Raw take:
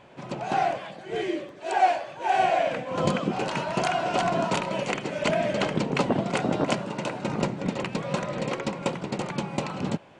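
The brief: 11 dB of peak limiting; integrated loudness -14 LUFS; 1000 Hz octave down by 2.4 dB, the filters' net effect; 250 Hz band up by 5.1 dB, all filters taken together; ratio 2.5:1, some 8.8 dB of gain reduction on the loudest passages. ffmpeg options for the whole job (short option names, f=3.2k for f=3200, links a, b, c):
-af "equalizer=f=250:t=o:g=7,equalizer=f=1k:t=o:g=-4.5,acompressor=threshold=-31dB:ratio=2.5,volume=22dB,alimiter=limit=-4dB:level=0:latency=1"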